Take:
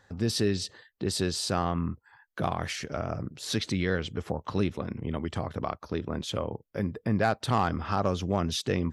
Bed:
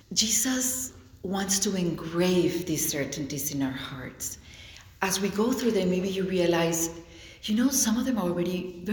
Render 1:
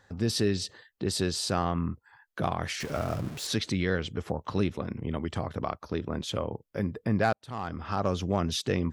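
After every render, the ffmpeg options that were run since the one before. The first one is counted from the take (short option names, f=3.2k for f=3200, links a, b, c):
-filter_complex "[0:a]asettb=1/sr,asplit=3[a][b][c];[a]atrim=end=2.804[d];[b]atrim=start=2.8:end=3.47,asetpts=PTS-STARTPTS,afade=t=in:d=0.004:c=qsin,afade=t=out:st=0.666:d=0.004:c=qsin,aeval=exprs='val(0)+0.5*0.015*sgn(val(0))':c=same[e];[c]atrim=start=3.466[f];[d][e]acrossfade=d=0.004:c1=hsin:c2=qsin[g];[g][f]acrossfade=d=0.004:c1=qsin:c2=hsin,asplit=2[h][i];[h]atrim=end=7.33,asetpts=PTS-STARTPTS,afade=t=out:st=7.326:d=0.004:c=hsin[j];[i]atrim=start=7.33,asetpts=PTS-STARTPTS,afade=t=in:d=0.81[k];[j][k]concat=n=2:v=0:a=1"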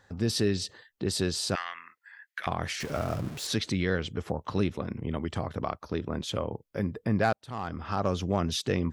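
-filter_complex "[0:a]asettb=1/sr,asplit=3[a][b][c];[a]atrim=end=1.554[d];[b]atrim=start=1.55:end=2.47,asetpts=PTS-STARTPTS,afade=t=in:d=0.004:c=qsin,afade=t=out:st=0.916:d=0.004:c=qsin,highpass=f=1.9k:t=q:w=4.2[e];[c]atrim=start=2.466[f];[d][e]acrossfade=d=0.004:c1=hsin:c2=qsin[g];[g][f]acrossfade=d=0.004:c1=qsin:c2=hsin"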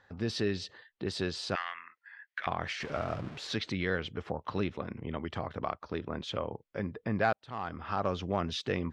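-af "lowpass=3.5k,lowshelf=f=450:g=-7"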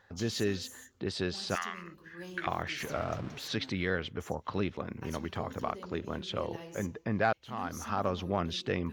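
-filter_complex "[1:a]volume=-21.5dB[a];[0:a][a]amix=inputs=2:normalize=0"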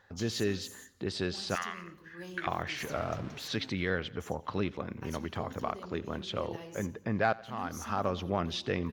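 -af "aecho=1:1:88|176|264|352:0.0794|0.0453|0.0258|0.0147"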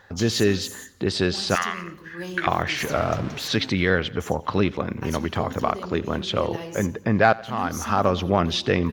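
-af "volume=11dB"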